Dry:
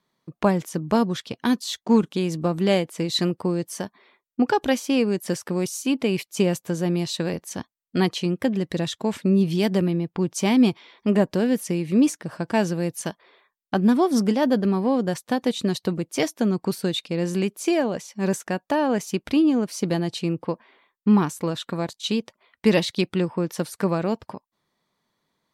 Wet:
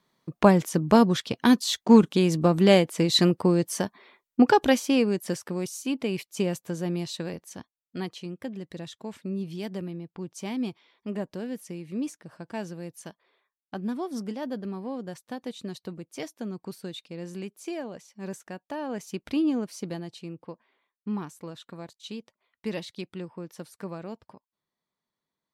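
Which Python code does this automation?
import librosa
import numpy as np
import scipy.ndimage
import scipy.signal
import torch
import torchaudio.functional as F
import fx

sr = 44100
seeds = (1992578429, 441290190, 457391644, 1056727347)

y = fx.gain(x, sr, db=fx.line((4.47, 2.5), (5.58, -6.0), (6.99, -6.0), (8.12, -13.0), (18.69, -13.0), (19.49, -5.5), (20.17, -14.0)))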